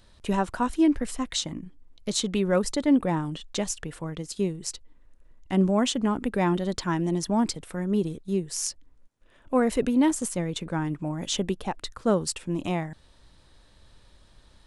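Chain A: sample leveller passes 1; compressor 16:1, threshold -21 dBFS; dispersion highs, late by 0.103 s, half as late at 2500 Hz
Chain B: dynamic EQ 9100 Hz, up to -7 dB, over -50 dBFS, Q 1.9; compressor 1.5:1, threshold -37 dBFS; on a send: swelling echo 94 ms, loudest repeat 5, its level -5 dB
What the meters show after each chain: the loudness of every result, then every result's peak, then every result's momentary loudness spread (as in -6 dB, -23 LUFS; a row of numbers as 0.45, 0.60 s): -27.5, -27.5 LUFS; -10.0, -12.5 dBFS; 6, 7 LU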